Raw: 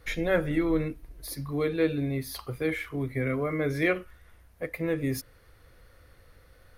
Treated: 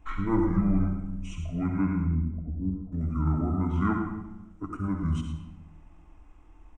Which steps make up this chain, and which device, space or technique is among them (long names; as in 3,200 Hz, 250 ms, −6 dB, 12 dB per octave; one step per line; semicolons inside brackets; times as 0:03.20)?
0:02.05–0:02.93: Bessel low-pass filter 600 Hz, order 6
monster voice (pitch shifter −9 semitones; low-shelf EQ 130 Hz +7.5 dB; single-tap delay 110 ms −12 dB; convolution reverb RT60 1.0 s, pre-delay 57 ms, DRR 4 dB)
flat-topped bell 6,200 Hz −10.5 dB
level −3.5 dB